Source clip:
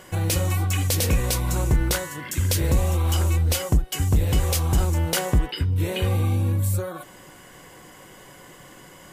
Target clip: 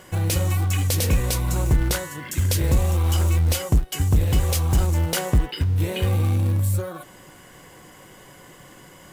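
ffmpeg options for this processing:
-filter_complex "[0:a]equalizer=f=87:t=o:w=2.5:g=2.5,asplit=2[a][b];[b]acrusher=bits=2:mode=log:mix=0:aa=0.000001,volume=-11dB[c];[a][c]amix=inputs=2:normalize=0,volume=-3dB"

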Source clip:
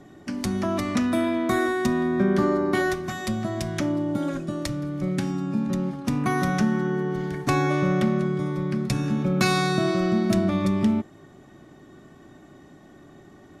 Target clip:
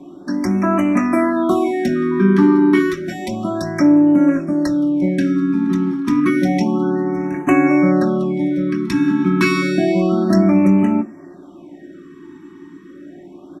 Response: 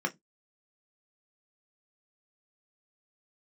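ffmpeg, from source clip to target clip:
-filter_complex "[0:a]aecho=1:1:3.1:0.47[a];[1:a]atrim=start_sample=2205[b];[a][b]afir=irnorm=-1:irlink=0,afftfilt=real='re*(1-between(b*sr/1024,550*pow(4200/550,0.5+0.5*sin(2*PI*0.3*pts/sr))/1.41,550*pow(4200/550,0.5+0.5*sin(2*PI*0.3*pts/sr))*1.41))':imag='im*(1-between(b*sr/1024,550*pow(4200/550,0.5+0.5*sin(2*PI*0.3*pts/sr))/1.41,550*pow(4200/550,0.5+0.5*sin(2*PI*0.3*pts/sr))*1.41))':win_size=1024:overlap=0.75"

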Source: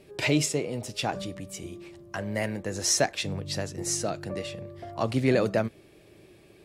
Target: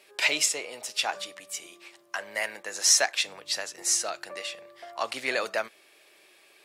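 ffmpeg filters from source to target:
-af "highpass=1k,volume=5dB"

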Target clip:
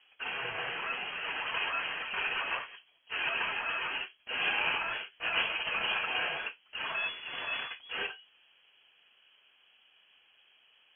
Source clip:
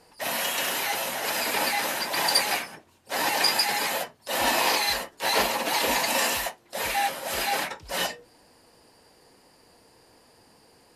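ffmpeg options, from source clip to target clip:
-filter_complex "[0:a]asettb=1/sr,asplit=3[a][b][c];[a]atrim=end=6.964[d];[b]atrim=start=6.96:end=7.69,asetpts=PTS-STARTPTS,afade=t=in:d=0.004:c=qsin,afade=t=out:st=0.726:d=0.004:c=qsin,aeval=exprs='if(lt(val(0),0),0.447*val(0),val(0))':c=same[e];[c]atrim=start=7.686[f];[d][e]acrossfade=d=0.004:c1=hsin:c2=qsin[g];[g][f]acrossfade=d=0.004:c1=qsin:c2=hsin,lowpass=f=2.9k:t=q:w=0.5098,lowpass=f=2.9k:t=q:w=0.6013,lowpass=f=2.9k:t=q:w=0.9,lowpass=f=2.9k:t=q:w=2.563,afreqshift=-3400,volume=-6dB"

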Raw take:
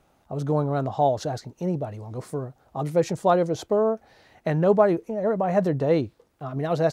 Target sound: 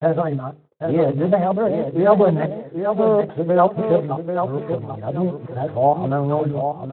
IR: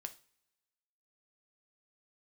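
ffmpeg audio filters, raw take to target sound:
-filter_complex "[0:a]areverse,lowpass=f=2k:w=0.5412,lowpass=f=2k:w=1.3066,bandreject=f=50:t=h:w=6,bandreject=f=100:t=h:w=6,bandreject=f=150:t=h:w=6,bandreject=f=200:t=h:w=6,bandreject=f=250:t=h:w=6,bandreject=f=300:t=h:w=6,bandreject=f=350:t=h:w=6,bandreject=f=400:t=h:w=6,bandreject=f=450:t=h:w=6,bandreject=f=500:t=h:w=6,agate=range=-48dB:threshold=-51dB:ratio=16:detection=peak,aecho=1:1:788|1576|2364:0.447|0.112|0.0279,asplit=2[a][b];[1:a]atrim=start_sample=2205,afade=t=out:st=0.26:d=0.01,atrim=end_sample=11907[c];[b][c]afir=irnorm=-1:irlink=0,volume=-7dB[d];[a][d]amix=inputs=2:normalize=0,volume=2.5dB" -ar 8000 -c:a libspeex -b:a 18k

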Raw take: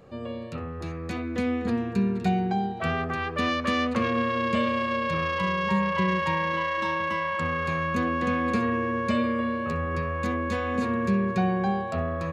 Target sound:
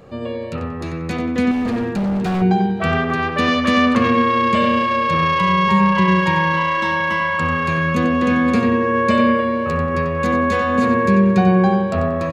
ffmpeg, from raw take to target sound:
-filter_complex "[0:a]asplit=2[a][b];[b]adelay=92,lowpass=f=3.8k:p=1,volume=-6dB,asplit=2[c][d];[d]adelay=92,lowpass=f=3.8k:p=1,volume=0.42,asplit=2[e][f];[f]adelay=92,lowpass=f=3.8k:p=1,volume=0.42,asplit=2[g][h];[h]adelay=92,lowpass=f=3.8k:p=1,volume=0.42,asplit=2[i][j];[j]adelay=92,lowpass=f=3.8k:p=1,volume=0.42[k];[a][c][e][g][i][k]amix=inputs=6:normalize=0,asettb=1/sr,asplit=3[l][m][n];[l]atrim=end=1.514[o];[m]atrim=start=1.51:end=2.42,asetpts=PTS-STARTPTS,afade=t=in:d=0.004:c=qsin,afade=t=out:st=0.906:d=0.004:c=qsin,volume=25.5dB,asoftclip=hard,volume=-25.5dB[p];[n]atrim=start=2.416[q];[o][p]acrossfade=d=0.004:c1=hsin:c2=qsin[r];[r][q]acrossfade=d=0.004:c1=qsin:c2=hsin,volume=8dB"

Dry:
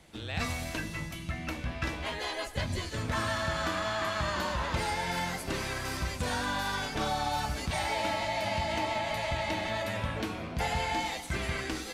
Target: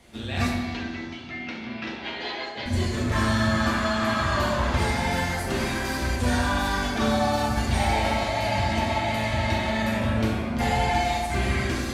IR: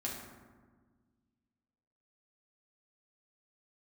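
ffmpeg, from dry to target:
-filter_complex "[0:a]asettb=1/sr,asplit=3[a][b][c];[a]atrim=end=0.494[d];[b]atrim=start=0.49:end=2.66,asetpts=PTS-STARTPTS,afade=t=in:d=0.004:c=qsin,afade=t=out:st=2.166:d=0.004:c=qsin,highpass=320,equalizer=f=610:t=q:w=4:g=-8,equalizer=f=1.1k:t=q:w=4:g=-7,equalizer=f=1.6k:t=q:w=4:g=-5,lowpass=f=4.7k:w=0.5412,lowpass=f=4.7k:w=1.3066[e];[c]atrim=start=2.656[f];[d][e]acrossfade=d=0.004:c1=hsin:c2=qsin[g];[g][f]acrossfade=d=0.004:c1=qsin:c2=hsin[h];[1:a]atrim=start_sample=2205[i];[h][i]afir=irnorm=-1:irlink=0,volume=5dB"

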